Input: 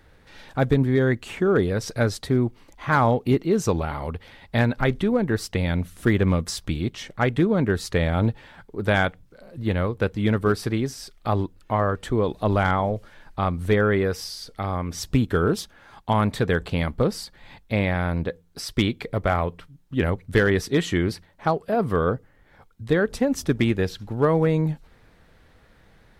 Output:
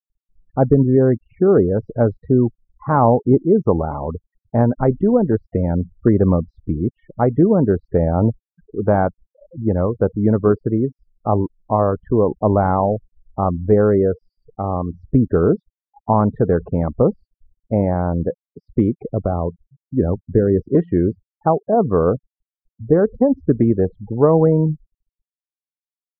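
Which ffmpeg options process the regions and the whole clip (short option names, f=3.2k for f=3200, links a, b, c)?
-filter_complex "[0:a]asettb=1/sr,asplit=3[a][b][c];[a]atrim=end=18.944[d];[b]atrim=start=18.94:end=20.75,asetpts=PTS-STARTPTS,afade=t=in:d=0.004:c=qsin,afade=t=out:st=1.806:d=0.004:c=qsin,agate=range=-33dB:threshold=-43dB:ratio=3:release=100:detection=peak,equalizer=f=2.6k:w=0.7:g=-3,acrossover=split=470|3000[e][f][g];[f]acompressor=threshold=-34dB:ratio=2:attack=3.2:release=140:knee=2.83:detection=peak[h];[e][h][g]amix=inputs=3:normalize=0[i];[c]atrim=start=20.746[j];[d][i]acrossfade=d=0.004:c1=hsin:c2=qsin[k];[k][j]acrossfade=d=0.004:c1=qsin:c2=hsin,afftfilt=real='re*gte(hypot(re,im),0.0398)':imag='im*gte(hypot(re,im),0.0398)':win_size=1024:overlap=0.75,lowpass=f=1k:w=0.5412,lowpass=f=1k:w=1.3066,lowshelf=f=88:g=-8.5,volume=7.5dB"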